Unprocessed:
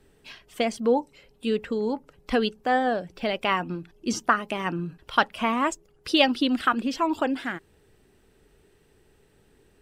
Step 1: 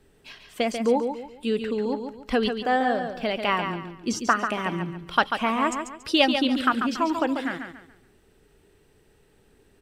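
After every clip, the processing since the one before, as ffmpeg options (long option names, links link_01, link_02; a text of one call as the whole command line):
ffmpeg -i in.wav -af "aecho=1:1:141|282|423|564:0.447|0.143|0.0457|0.0146" out.wav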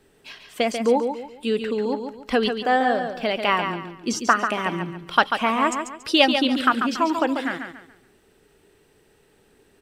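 ffmpeg -i in.wav -af "lowshelf=frequency=130:gain=-10,volume=3.5dB" out.wav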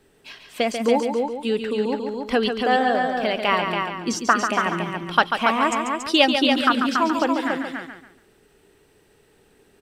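ffmpeg -i in.wav -af "aecho=1:1:282:0.422" out.wav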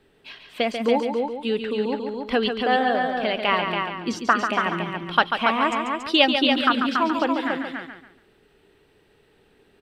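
ffmpeg -i in.wav -af "highshelf=frequency=4900:width_type=q:width=1.5:gain=-7.5,volume=-1.5dB" out.wav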